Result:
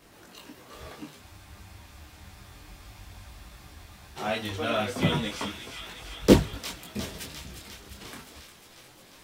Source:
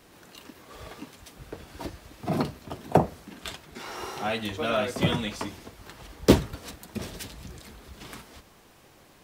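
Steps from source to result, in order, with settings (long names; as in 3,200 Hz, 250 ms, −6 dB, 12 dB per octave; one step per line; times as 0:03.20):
on a send: delay with a high-pass on its return 354 ms, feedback 71%, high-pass 1,800 Hz, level −8 dB
on the sum: frozen spectrum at 0:01.24, 2.92 s
micro pitch shift up and down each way 11 cents
level +3.5 dB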